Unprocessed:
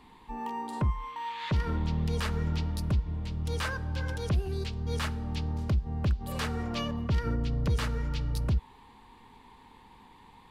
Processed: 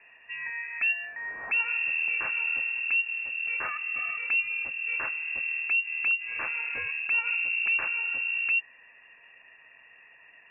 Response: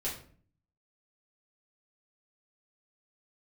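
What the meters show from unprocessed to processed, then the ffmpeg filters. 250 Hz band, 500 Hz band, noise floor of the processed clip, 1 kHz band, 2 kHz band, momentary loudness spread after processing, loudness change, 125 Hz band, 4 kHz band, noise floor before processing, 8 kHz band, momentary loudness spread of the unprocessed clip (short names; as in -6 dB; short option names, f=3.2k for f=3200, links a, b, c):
under -25 dB, -13.0 dB, -56 dBFS, -5.5 dB, +16.5 dB, 6 LU, +5.0 dB, under -35 dB, n/a, -56 dBFS, under -30 dB, 5 LU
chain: -af "lowpass=f=2.4k:t=q:w=0.5098,lowpass=f=2.4k:t=q:w=0.6013,lowpass=f=2.4k:t=q:w=0.9,lowpass=f=2.4k:t=q:w=2.563,afreqshift=-2800"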